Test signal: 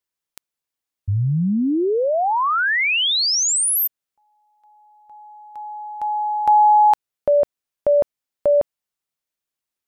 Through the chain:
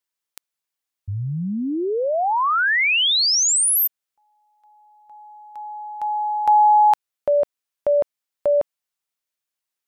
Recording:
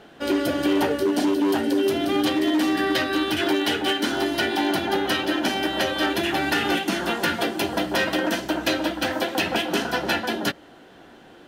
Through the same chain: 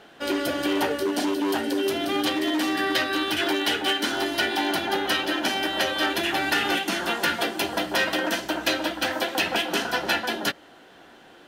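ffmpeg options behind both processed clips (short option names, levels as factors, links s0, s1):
-af "lowshelf=f=460:g=-8,volume=1.12"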